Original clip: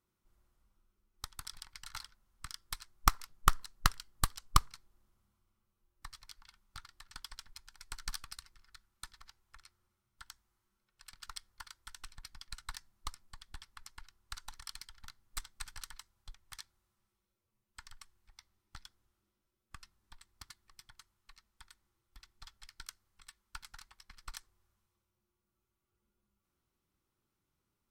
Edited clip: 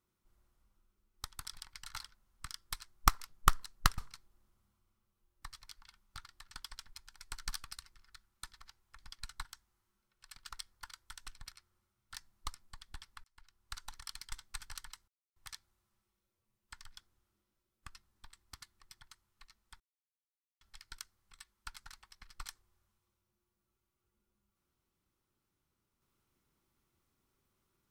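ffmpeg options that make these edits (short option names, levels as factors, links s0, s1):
-filter_complex "[0:a]asplit=13[s0][s1][s2][s3][s4][s5][s6][s7][s8][s9][s10][s11][s12];[s0]atrim=end=3.982[s13];[s1]atrim=start=4.578:end=9.592[s14];[s2]atrim=start=12.278:end=12.742[s15];[s3]atrim=start=10.218:end=12.282[s16];[s4]atrim=start=9.588:end=10.222[s17];[s5]atrim=start=12.738:end=13.84,asetpts=PTS-STARTPTS,afade=t=out:st=1.098:d=0.004:c=hsin[s18];[s6]atrim=start=13.84:end=14.922,asetpts=PTS-STARTPTS,afade=t=in:d=0.51[s19];[s7]atrim=start=15.378:end=16.14,asetpts=PTS-STARTPTS,afade=t=out:st=0.758:d=0.004:c=hsin[s20];[s8]atrim=start=16.14:end=16.42,asetpts=PTS-STARTPTS,volume=0[s21];[s9]atrim=start=16.42:end=17.982,asetpts=PTS-STARTPTS,afade=t=in:d=0.004:c=hsin[s22];[s10]atrim=start=18.798:end=21.68,asetpts=PTS-STARTPTS,afade=t=out:st=2.878:d=0.004:c=hsin[s23];[s11]atrim=start=21.68:end=22.49,asetpts=PTS-STARTPTS,volume=0[s24];[s12]atrim=start=22.49,asetpts=PTS-STARTPTS,afade=t=in:d=0.004:c=hsin[s25];[s13][s14]acrossfade=d=0.004:c1=hsin:c2=hsin[s26];[s26][s15]acrossfade=d=0.004:c1=hsin:c2=hsin[s27];[s27][s16]acrossfade=d=0.004:c1=hsin:c2=hsin[s28];[s28][s17]acrossfade=d=0.004:c1=hsin:c2=hsin[s29];[s18][s19]concat=n=2:v=0:a=1[s30];[s29][s30]acrossfade=d=0.004:c1=hsin:c2=hsin[s31];[s20][s21][s22]concat=n=3:v=0:a=1[s32];[s31][s32]acrossfade=d=0.004:c1=hsin:c2=hsin[s33];[s23][s24][s25]concat=n=3:v=0:a=1[s34];[s33][s34]acrossfade=d=0.004:c1=hsin:c2=hsin"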